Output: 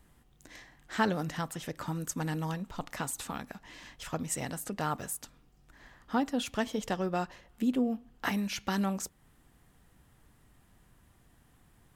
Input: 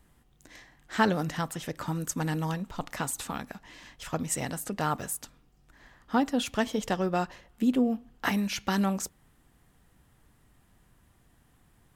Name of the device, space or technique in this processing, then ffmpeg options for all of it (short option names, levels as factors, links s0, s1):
parallel compression: -filter_complex "[0:a]asplit=2[s0][s1];[s1]acompressor=threshold=0.00631:ratio=6,volume=0.708[s2];[s0][s2]amix=inputs=2:normalize=0,volume=0.596"